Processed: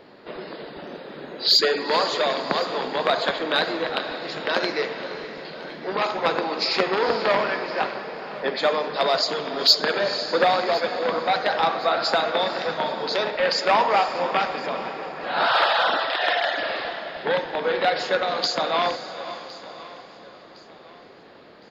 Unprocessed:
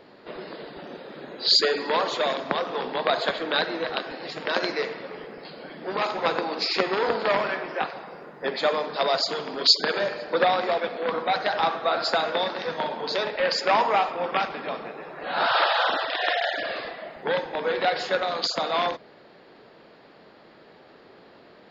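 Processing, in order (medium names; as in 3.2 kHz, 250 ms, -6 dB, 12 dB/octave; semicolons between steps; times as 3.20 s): echo that smears into a reverb 489 ms, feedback 42%, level -12 dB; in parallel at -11 dB: overload inside the chain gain 16 dB; on the sum: feedback delay 1061 ms, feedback 38%, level -19.5 dB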